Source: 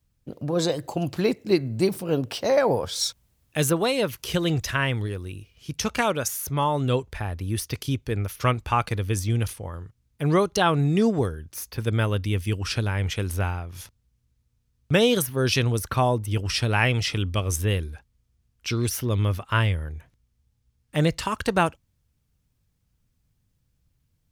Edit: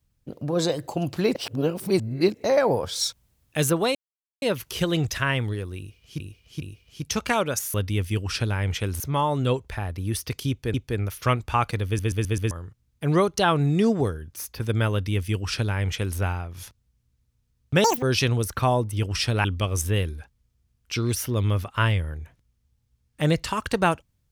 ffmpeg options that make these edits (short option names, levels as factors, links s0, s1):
-filter_complex "[0:a]asplit=17[s0][s1][s2][s3][s4][s5][s6][s7][s8][s9][s10][s11][s12][s13][s14][s15][s16];[s0]atrim=end=1.352[s17];[s1]atrim=start=1.348:end=2.442,asetpts=PTS-STARTPTS,areverse[s18];[s2]atrim=start=2.438:end=3.95,asetpts=PTS-STARTPTS,afade=t=out:st=1.508:d=0.004:c=hsin,apad=pad_dur=0.47[s19];[s3]atrim=start=3.95:end=5.732,asetpts=PTS-STARTPTS,afade=t=in:d=0.004:c=hsin[s20];[s4]atrim=start=5.308:end=5.732[s21];[s5]atrim=start=5.308:end=6.432[s22];[s6]atrim=start=12.098:end=13.362[s23];[s7]atrim=start=6.428:end=8.172[s24];[s8]atrim=start=7.918:end=9.172[s25];[s9]atrim=start=9.038:end=9.172[s26];[s10]atrim=start=9.038:end=9.172[s27];[s11]atrim=start=9.038:end=9.172[s28];[s12]atrim=start=9.038:end=9.172[s29];[s13]atrim=start=9.688:end=15.024[s30];[s14]atrim=start=15.02:end=15.37,asetpts=PTS-STARTPTS,asetrate=83349,aresample=44100[s31];[s15]atrim=start=15.366:end=16.792[s32];[s16]atrim=start=17.188[s33];[s17][s18]acrossfade=d=0.004:c1=hsin:c2=hsin[s34];[s19][s20]concat=n=2:v=0:a=1[s35];[s34][s35]acrossfade=d=0.004:c1=hsin:c2=hsin[s36];[s36][s21]acrossfade=d=0.004:c1=hsin:c2=hsin[s37];[s37][s22]acrossfade=d=0.004:c1=hsin:c2=hsin[s38];[s38][s23]acrossfade=d=0.004:c1=hsin:c2=hsin[s39];[s39][s24]acrossfade=d=0.004:c1=hsin:c2=hsin[s40];[s40][s25]acrossfade=d=0.004:c1=hsin:c2=hsin[s41];[s41][s26]acrossfade=d=0.004:c1=hsin:c2=hsin[s42];[s42][s27]acrossfade=d=0.004:c1=hsin:c2=hsin[s43];[s43][s28]acrossfade=d=0.004:c1=hsin:c2=hsin[s44];[s44][s29]acrossfade=d=0.004:c1=hsin:c2=hsin[s45];[s45][s30]acrossfade=d=0.004:c1=hsin:c2=hsin[s46];[s46][s31]acrossfade=d=0.004:c1=hsin:c2=hsin[s47];[s47][s32]acrossfade=d=0.004:c1=hsin:c2=hsin[s48];[s48][s33]acrossfade=d=0.004:c1=hsin:c2=hsin"